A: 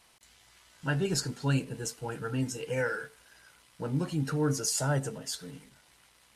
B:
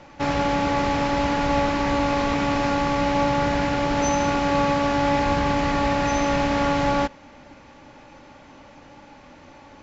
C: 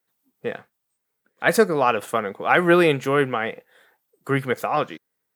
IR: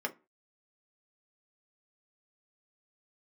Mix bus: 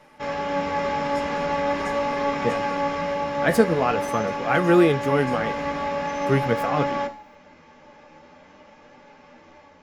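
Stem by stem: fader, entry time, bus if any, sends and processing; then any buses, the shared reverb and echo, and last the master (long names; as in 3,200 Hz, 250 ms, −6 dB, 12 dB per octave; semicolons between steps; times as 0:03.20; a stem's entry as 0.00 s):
−3.0 dB, 0.00 s, bus A, send −6.5 dB, spectral tilt +1.5 dB per octave; downward compressor, threshold −37 dBFS, peak gain reduction 13.5 dB
+1.0 dB, 0.00 s, bus A, send −9 dB, no processing
−1.0 dB, 2.00 s, no bus, no send, low-shelf EQ 310 Hz +11.5 dB
bus A: 0.0 dB, tuned comb filter 85 Hz, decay 0.61 s, harmonics all, mix 80%; brickwall limiter −23 dBFS, peak gain reduction 6.5 dB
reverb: on, pre-delay 3 ms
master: automatic gain control gain up to 3 dB; flanger 0.44 Hz, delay 7 ms, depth 7.1 ms, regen +54%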